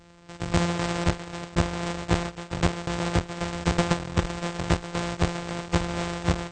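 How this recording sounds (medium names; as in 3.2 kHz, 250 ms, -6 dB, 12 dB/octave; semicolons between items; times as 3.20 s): a buzz of ramps at a fixed pitch in blocks of 256 samples; AAC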